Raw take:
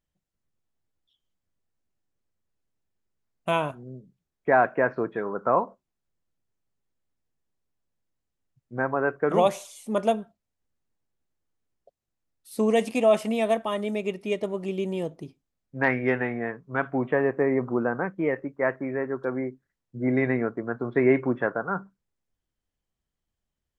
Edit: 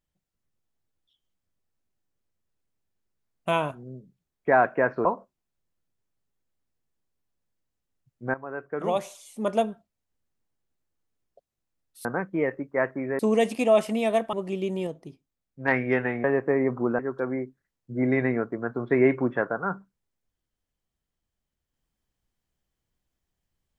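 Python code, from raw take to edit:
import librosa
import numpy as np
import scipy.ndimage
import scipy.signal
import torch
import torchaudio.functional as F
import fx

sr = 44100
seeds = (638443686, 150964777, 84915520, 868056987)

y = fx.edit(x, sr, fx.cut(start_s=5.05, length_s=0.5),
    fx.fade_in_from(start_s=8.84, length_s=1.37, floor_db=-14.5),
    fx.cut(start_s=13.69, length_s=0.8),
    fx.clip_gain(start_s=15.03, length_s=0.81, db=-3.5),
    fx.cut(start_s=16.4, length_s=0.75),
    fx.move(start_s=17.9, length_s=1.14, to_s=12.55), tone=tone)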